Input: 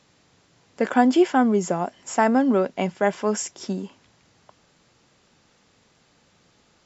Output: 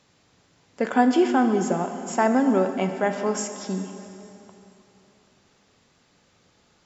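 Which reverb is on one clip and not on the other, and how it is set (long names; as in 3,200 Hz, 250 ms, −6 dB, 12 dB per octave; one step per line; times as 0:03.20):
dense smooth reverb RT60 3.1 s, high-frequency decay 0.85×, DRR 6.5 dB
level −2 dB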